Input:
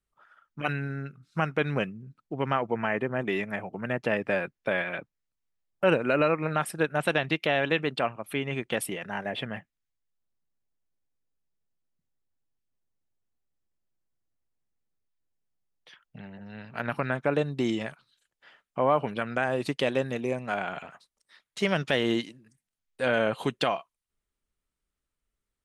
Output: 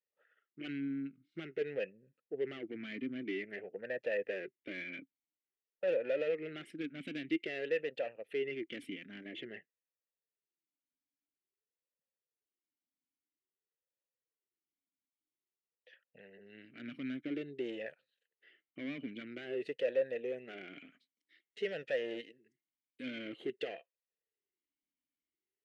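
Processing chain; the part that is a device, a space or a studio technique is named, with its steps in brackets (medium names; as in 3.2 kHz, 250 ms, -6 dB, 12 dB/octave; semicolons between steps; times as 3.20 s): talk box (valve stage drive 26 dB, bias 0.4; talking filter e-i 0.5 Hz); trim +4 dB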